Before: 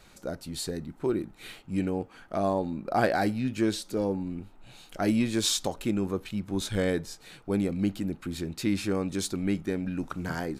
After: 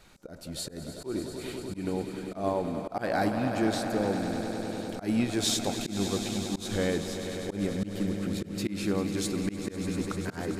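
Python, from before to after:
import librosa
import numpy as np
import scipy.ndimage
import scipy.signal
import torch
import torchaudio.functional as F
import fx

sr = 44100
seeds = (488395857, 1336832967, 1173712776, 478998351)

y = fx.echo_swell(x, sr, ms=99, loudest=5, wet_db=-12.5)
y = fx.auto_swell(y, sr, attack_ms=139.0)
y = y * librosa.db_to_amplitude(-1.5)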